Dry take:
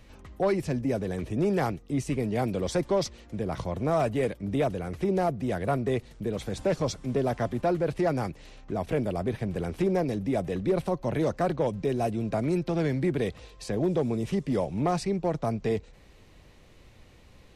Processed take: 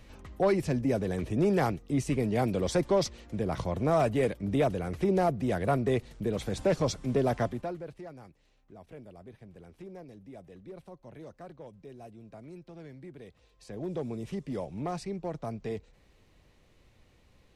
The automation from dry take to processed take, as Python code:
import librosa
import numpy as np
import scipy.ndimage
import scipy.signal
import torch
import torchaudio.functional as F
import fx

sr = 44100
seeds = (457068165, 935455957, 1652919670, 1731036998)

y = fx.gain(x, sr, db=fx.line((7.42, 0.0), (7.7, -11.0), (8.11, -20.0), (13.26, -20.0), (13.96, -8.0)))